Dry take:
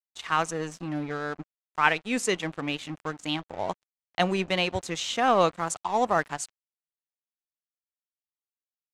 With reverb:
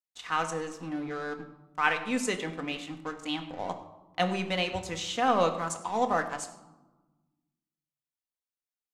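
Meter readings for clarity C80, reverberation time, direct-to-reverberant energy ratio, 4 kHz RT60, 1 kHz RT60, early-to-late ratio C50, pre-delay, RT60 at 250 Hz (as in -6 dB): 12.0 dB, 1.2 s, 5.0 dB, 0.60 s, 1.1 s, 10.5 dB, 4 ms, 1.8 s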